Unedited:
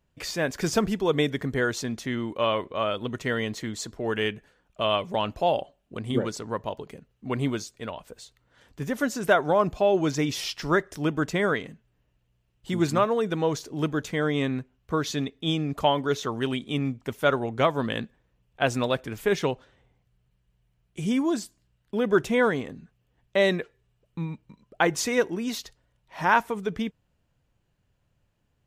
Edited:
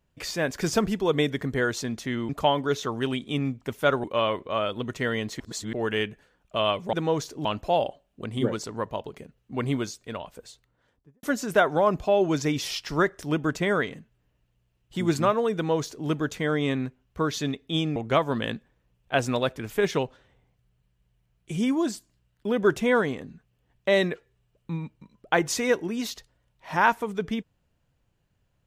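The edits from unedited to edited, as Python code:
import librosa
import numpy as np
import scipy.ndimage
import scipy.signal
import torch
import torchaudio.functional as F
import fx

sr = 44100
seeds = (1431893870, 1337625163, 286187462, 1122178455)

y = fx.studio_fade_out(x, sr, start_s=8.14, length_s=0.82)
y = fx.edit(y, sr, fx.reverse_span(start_s=3.65, length_s=0.33),
    fx.duplicate(start_s=13.28, length_s=0.52, to_s=5.18),
    fx.move(start_s=15.69, length_s=1.75, to_s=2.29), tone=tone)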